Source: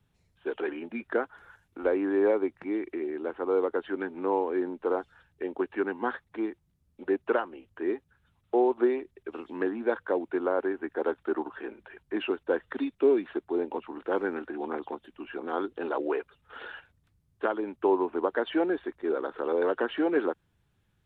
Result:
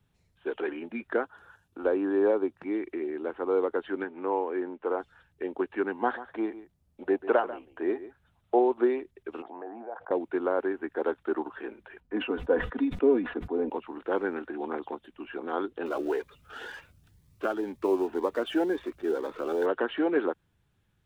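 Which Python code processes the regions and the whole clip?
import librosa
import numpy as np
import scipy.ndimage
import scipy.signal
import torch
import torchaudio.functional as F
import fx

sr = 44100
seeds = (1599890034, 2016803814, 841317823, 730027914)

y = fx.chain(x, sr, fx.highpass(hz=49.0, slope=12),
    fx.peak_eq(hz=2100.0, db=-13.0, octaves=0.23), at=(1.23, 2.63))
y = fx.chain(y, sr, fx.lowpass(hz=3200.0, slope=24),
    fx.low_shelf(hz=210.0, db=-10.0), at=(4.04, 5.0))
y = fx.chain(y, sr, fx.peak_eq(hz=690.0, db=7.0, octaves=0.65),
    fx.echo_single(ms=142, db=-15.0), at=(5.97, 8.59))
y = fx.chain(y, sr, fx.bandpass_q(hz=730.0, q=7.2),
    fx.air_absorb(metres=140.0),
    fx.env_flatten(amount_pct=70), at=(9.42, 10.11))
y = fx.chain(y, sr, fx.lowpass(hz=1300.0, slope=6),
    fx.comb(ms=4.1, depth=0.63),
    fx.sustainer(db_per_s=98.0), at=(12.0, 13.7))
y = fx.chain(y, sr, fx.law_mismatch(coded='mu'),
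    fx.notch_cascade(direction='rising', hz=2.0), at=(15.86, 19.66))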